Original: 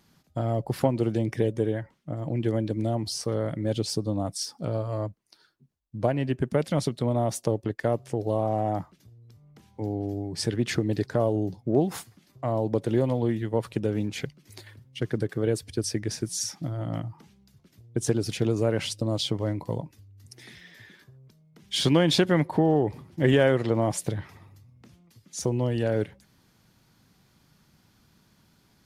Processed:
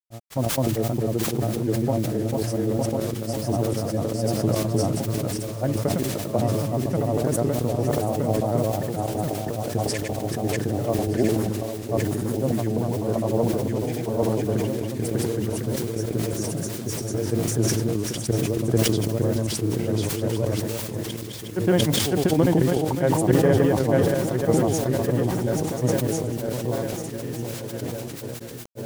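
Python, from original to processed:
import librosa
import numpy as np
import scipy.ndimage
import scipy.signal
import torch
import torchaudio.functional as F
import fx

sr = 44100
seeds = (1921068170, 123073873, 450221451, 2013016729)

p1 = fx.peak_eq(x, sr, hz=3600.0, db=-14.0, octaves=1.8)
p2 = p1 + fx.echo_swing(p1, sr, ms=1362, ratio=3, feedback_pct=46, wet_db=-4.0, dry=0)
p3 = fx.step_gate(p2, sr, bpm=140, pattern='xx.x.xx.xx.xxx', floor_db=-12.0, edge_ms=4.5)
p4 = fx.quant_dither(p3, sr, seeds[0], bits=6, dither='triangular')
p5 = p3 + (p4 * 10.0 ** (-9.5 / 20.0))
p6 = fx.granulator(p5, sr, seeds[1], grain_ms=100.0, per_s=20.0, spray_ms=802.0, spread_st=0)
y = fx.sustainer(p6, sr, db_per_s=23.0)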